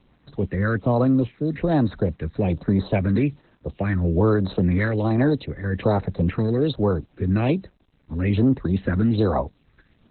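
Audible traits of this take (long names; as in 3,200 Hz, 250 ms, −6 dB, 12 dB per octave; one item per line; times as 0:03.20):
phaser sweep stages 6, 1.2 Hz, lowest notch 740–3,100 Hz
a quantiser's noise floor 10 bits, dither none
Opus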